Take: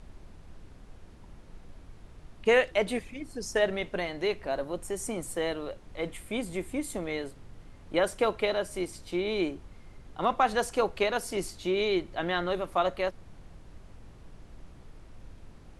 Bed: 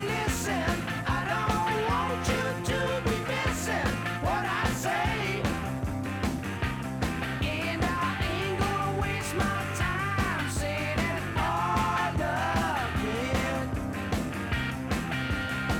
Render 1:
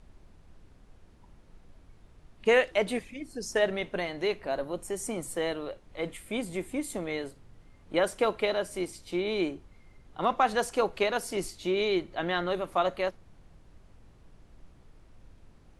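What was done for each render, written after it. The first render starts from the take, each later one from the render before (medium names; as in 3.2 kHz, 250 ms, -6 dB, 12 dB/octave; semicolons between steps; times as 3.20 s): noise print and reduce 6 dB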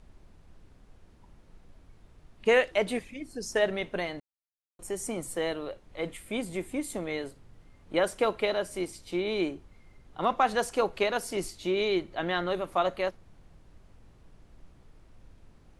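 4.20–4.79 s: mute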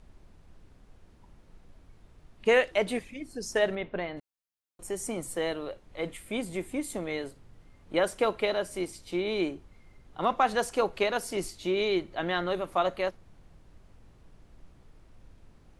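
3.75–4.17 s: distance through air 300 m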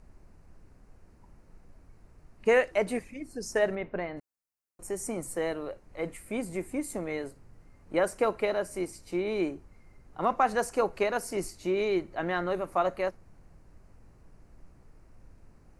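peaking EQ 3.4 kHz -14.5 dB 0.47 oct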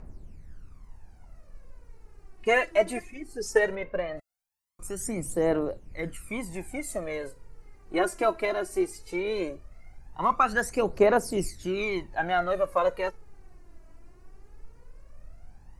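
phaser 0.18 Hz, delay 3.1 ms, feedback 70%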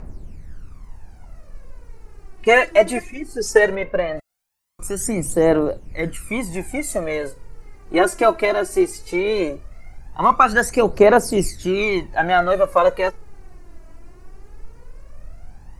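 trim +9.5 dB; peak limiter -1 dBFS, peak gain reduction 2 dB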